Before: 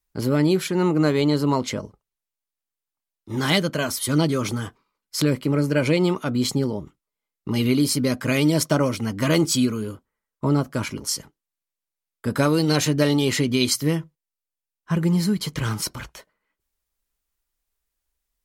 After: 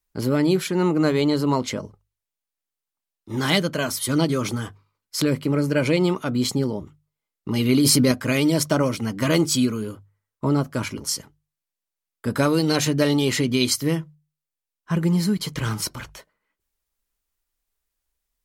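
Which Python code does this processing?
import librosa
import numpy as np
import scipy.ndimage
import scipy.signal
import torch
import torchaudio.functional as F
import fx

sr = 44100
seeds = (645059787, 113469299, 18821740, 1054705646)

y = fx.hum_notches(x, sr, base_hz=50, count=3)
y = fx.env_flatten(y, sr, amount_pct=100, at=(7.69, 8.12))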